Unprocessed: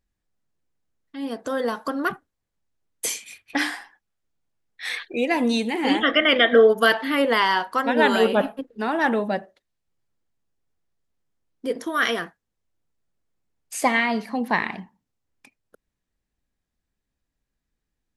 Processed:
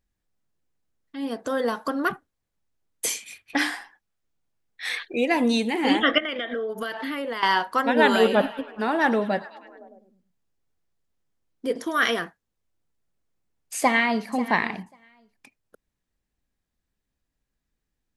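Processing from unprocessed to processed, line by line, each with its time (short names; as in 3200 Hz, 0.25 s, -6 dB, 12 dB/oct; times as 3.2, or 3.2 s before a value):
6.18–7.43 compressor 10:1, threshold -26 dBFS
7.94–12.14 delay with a stepping band-pass 0.103 s, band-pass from 5700 Hz, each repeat -0.7 oct, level -10 dB
13.78–14.28 echo throw 0.54 s, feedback 10%, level -15 dB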